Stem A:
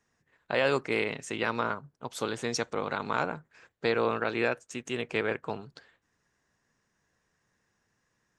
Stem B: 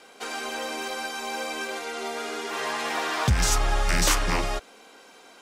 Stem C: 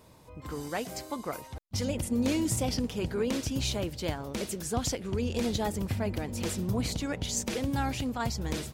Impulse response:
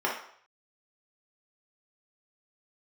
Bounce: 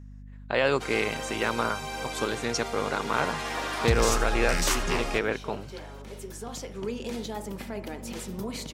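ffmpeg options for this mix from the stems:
-filter_complex "[0:a]volume=2dB,asplit=2[a][b];[1:a]adelay=600,volume=-4dB,asplit=2[c][d];[d]volume=-16dB[e];[2:a]highpass=f=170:w=0.5412,highpass=f=170:w=1.3066,alimiter=level_in=2.5dB:limit=-24dB:level=0:latency=1:release=340,volume=-2.5dB,adelay=1700,volume=0.5dB,asplit=2[f][g];[g]volume=-16.5dB[h];[b]apad=whole_len=460050[i];[f][i]sidechaincompress=threshold=-44dB:ratio=8:attack=42:release=974[j];[3:a]atrim=start_sample=2205[k];[h][k]afir=irnorm=-1:irlink=0[l];[e]aecho=0:1:78:1[m];[a][c][j][l][m]amix=inputs=5:normalize=0,aeval=exprs='val(0)+0.00708*(sin(2*PI*50*n/s)+sin(2*PI*2*50*n/s)/2+sin(2*PI*3*50*n/s)/3+sin(2*PI*4*50*n/s)/4+sin(2*PI*5*50*n/s)/5)':c=same"

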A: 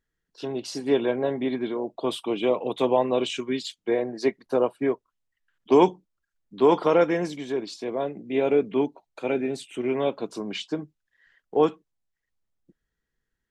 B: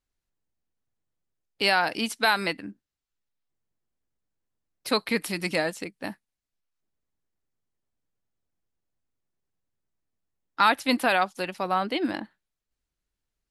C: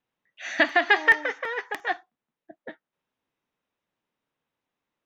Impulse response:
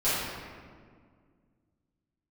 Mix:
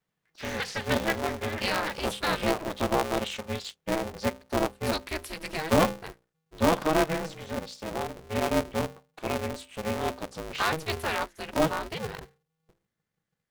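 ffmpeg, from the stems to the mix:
-filter_complex "[0:a]adynamicequalizer=threshold=0.0112:dfrequency=190:dqfactor=1.2:tfrequency=190:tqfactor=1.2:attack=5:release=100:ratio=0.375:range=3:mode=cutabove:tftype=bell,volume=-4dB[a];[1:a]volume=-7dB[b];[2:a]acrossover=split=130|3000[c][d][e];[d]acompressor=threshold=-35dB:ratio=3[f];[c][f][e]amix=inputs=3:normalize=0,volume=-3dB[g];[a][b][g]amix=inputs=3:normalize=0,bandreject=f=60:t=h:w=6,bandreject=f=120:t=h:w=6,bandreject=f=180:t=h:w=6,bandreject=f=240:t=h:w=6,bandreject=f=300:t=h:w=6,bandreject=f=360:t=h:w=6,bandreject=f=420:t=h:w=6,aeval=exprs='val(0)*sgn(sin(2*PI*160*n/s))':c=same"

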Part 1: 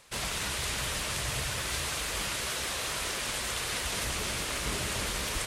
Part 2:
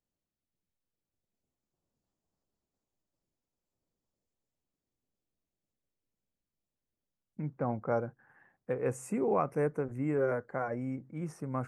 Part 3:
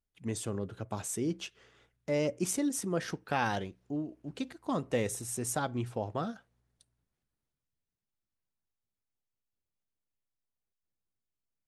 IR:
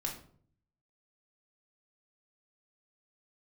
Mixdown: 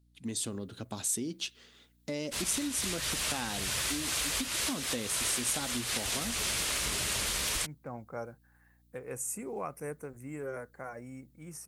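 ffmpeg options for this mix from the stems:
-filter_complex "[0:a]adelay=2200,volume=0.5dB[a];[1:a]aemphasis=mode=production:type=75fm,adelay=250,volume=-9dB[b];[2:a]equalizer=f=250:t=o:w=0.67:g=9,equalizer=f=4k:t=o:w=0.67:g=9,equalizer=f=10k:t=o:w=0.67:g=5,volume=-3dB,asplit=2[c][d];[d]apad=whole_len=338062[e];[a][e]sidechaincompress=threshold=-33dB:ratio=3:attack=21:release=329[f];[f][c]amix=inputs=2:normalize=0,aeval=exprs='val(0)+0.000562*(sin(2*PI*60*n/s)+sin(2*PI*2*60*n/s)/2+sin(2*PI*3*60*n/s)/3+sin(2*PI*4*60*n/s)/4+sin(2*PI*5*60*n/s)/5)':c=same,acompressor=threshold=-35dB:ratio=3,volume=0dB[g];[b][g]amix=inputs=2:normalize=0,highshelf=f=2.3k:g=8.5"

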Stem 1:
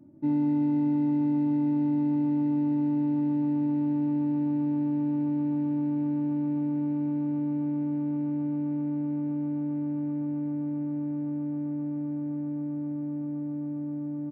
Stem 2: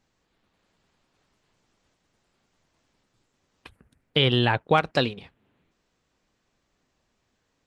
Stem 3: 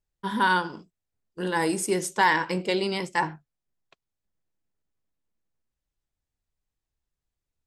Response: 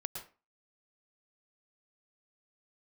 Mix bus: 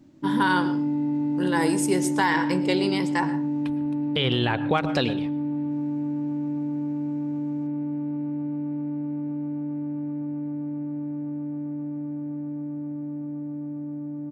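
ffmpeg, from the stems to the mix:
-filter_complex "[0:a]volume=0dB[a];[1:a]volume=2dB,asplit=2[b][c];[c]volume=-12dB[d];[2:a]volume=-2dB,asplit=2[e][f];[f]volume=-7dB[g];[3:a]atrim=start_sample=2205[h];[d][g]amix=inputs=2:normalize=0[i];[i][h]afir=irnorm=-1:irlink=0[j];[a][b][e][j]amix=inputs=4:normalize=0,alimiter=limit=-11dB:level=0:latency=1:release=95"

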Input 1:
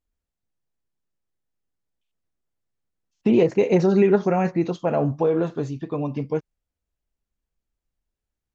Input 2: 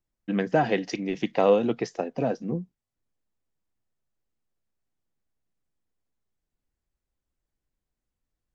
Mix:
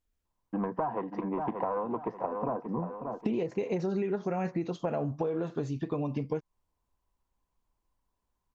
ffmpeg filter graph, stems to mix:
-filter_complex "[0:a]volume=0.5dB[a];[1:a]asoftclip=type=tanh:threshold=-20dB,lowpass=f=1k:t=q:w=9.2,adelay=250,volume=-1.5dB,asplit=2[b][c];[c]volume=-11.5dB,aecho=0:1:582|1164|1746|2328|2910:1|0.35|0.122|0.0429|0.015[d];[a][b][d]amix=inputs=3:normalize=0,acompressor=threshold=-28dB:ratio=10"

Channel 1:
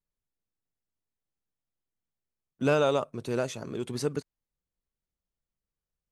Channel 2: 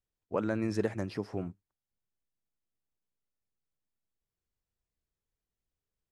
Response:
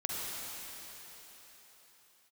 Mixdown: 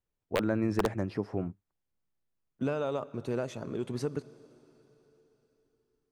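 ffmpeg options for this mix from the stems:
-filter_complex "[0:a]acompressor=threshold=-27dB:ratio=10,volume=-0.5dB,asplit=2[a][b];[b]volume=-21.5dB[c];[1:a]aeval=exprs='(mod(8.41*val(0)+1,2)-1)/8.41':c=same,volume=3dB[d];[2:a]atrim=start_sample=2205[e];[c][e]afir=irnorm=-1:irlink=0[f];[a][d][f]amix=inputs=3:normalize=0,highshelf=f=2.6k:g=-10"

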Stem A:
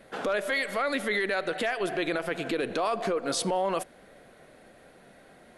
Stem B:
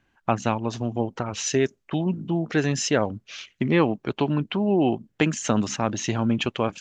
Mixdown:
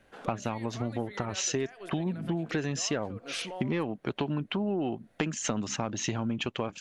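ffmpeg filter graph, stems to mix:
-filter_complex "[0:a]volume=-12.5dB[a];[1:a]acontrast=45,volume=-3dB[b];[a][b]amix=inputs=2:normalize=0,acompressor=threshold=-28dB:ratio=6"

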